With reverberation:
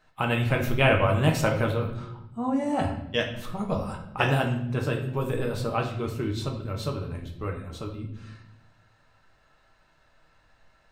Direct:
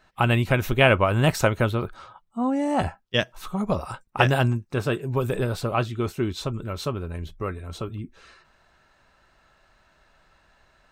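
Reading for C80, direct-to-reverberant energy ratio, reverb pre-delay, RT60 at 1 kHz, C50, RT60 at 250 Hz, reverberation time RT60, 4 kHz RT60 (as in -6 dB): 10.5 dB, 1.0 dB, 7 ms, 0.70 s, 7.5 dB, 1.3 s, 0.80 s, 0.70 s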